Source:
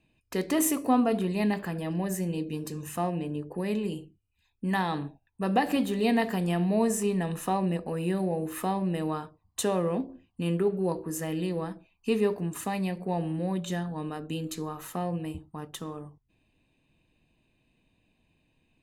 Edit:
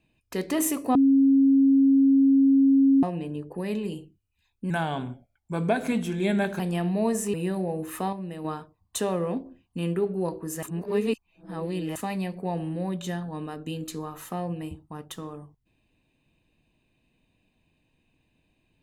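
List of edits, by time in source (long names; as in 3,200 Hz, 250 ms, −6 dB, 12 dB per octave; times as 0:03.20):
0:00.95–0:03.03: beep over 272 Hz −15 dBFS
0:04.70–0:06.35: play speed 87%
0:07.09–0:07.97: remove
0:08.76–0:09.08: clip gain −6.5 dB
0:11.26–0:12.59: reverse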